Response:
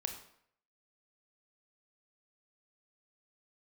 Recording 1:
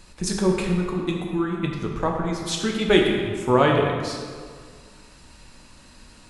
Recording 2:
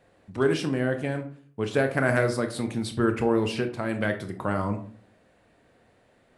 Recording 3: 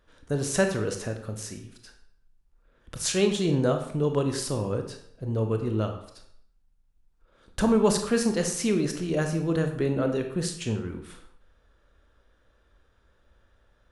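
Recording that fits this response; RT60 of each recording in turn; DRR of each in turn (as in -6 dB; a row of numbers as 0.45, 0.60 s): 3; 1.9, 0.45, 0.70 s; -0.5, 6.5, 5.0 dB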